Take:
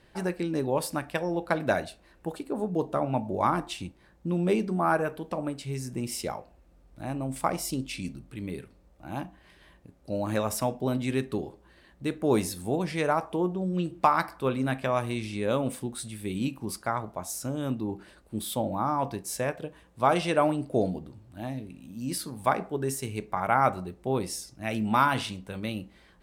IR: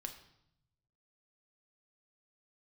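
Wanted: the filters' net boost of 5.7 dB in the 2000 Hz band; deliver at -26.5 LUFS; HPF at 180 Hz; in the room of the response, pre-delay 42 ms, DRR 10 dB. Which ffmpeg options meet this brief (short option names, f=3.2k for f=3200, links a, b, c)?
-filter_complex "[0:a]highpass=180,equalizer=f=2k:t=o:g=8,asplit=2[a][b];[1:a]atrim=start_sample=2205,adelay=42[c];[b][c]afir=irnorm=-1:irlink=0,volume=-7dB[d];[a][d]amix=inputs=2:normalize=0,volume=1.5dB"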